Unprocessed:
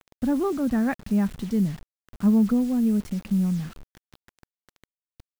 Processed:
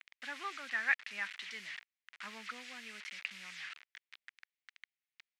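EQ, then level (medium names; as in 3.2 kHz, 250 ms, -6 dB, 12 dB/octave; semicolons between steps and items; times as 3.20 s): ladder band-pass 2.4 kHz, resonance 50%; peaking EQ 3.2 kHz +3.5 dB 2.9 oct; +11.5 dB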